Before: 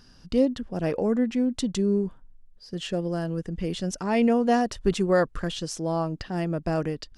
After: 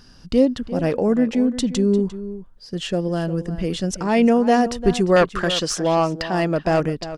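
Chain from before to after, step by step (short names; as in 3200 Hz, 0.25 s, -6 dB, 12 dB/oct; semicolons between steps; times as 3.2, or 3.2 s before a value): 5.16–6.8 overdrive pedal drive 14 dB, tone 4900 Hz, clips at -13 dBFS; outdoor echo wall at 60 m, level -13 dB; gain +5.5 dB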